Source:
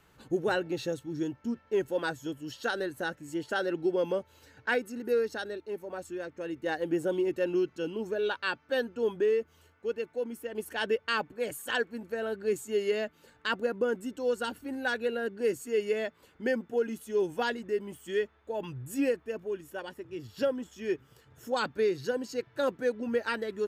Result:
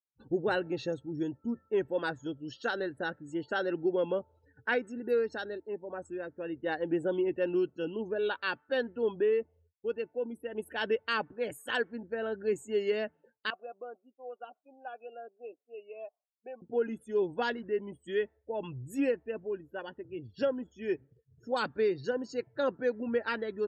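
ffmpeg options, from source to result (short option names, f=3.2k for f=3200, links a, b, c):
-filter_complex "[0:a]asettb=1/sr,asplit=3[a][b][c];[a]atrim=end=13.504[d];[b]atrim=start=13.5:end=16.62,asetpts=PTS-STARTPTS,afade=t=in:d=0.004:c=qsin,afade=t=out:st=3.116:d=0.004:c=qsin,asplit=3[e][f][g];[e]bandpass=f=730:t=q:w=8,volume=0dB[h];[f]bandpass=f=1.09k:t=q:w=8,volume=-6dB[i];[g]bandpass=f=2.44k:t=q:w=8,volume=-9dB[j];[h][i][j]amix=inputs=3:normalize=0[k];[c]atrim=start=16.616[l];[d][k]acrossfade=d=0.004:c1=hsin:c2=qsin[m];[m][l]acrossfade=d=0.004:c1=qsin:c2=hsin,highshelf=f=7.7k:g=-8,agate=range=-33dB:threshold=-55dB:ratio=3:detection=peak,afftdn=nr=35:nf=-51,volume=-1dB"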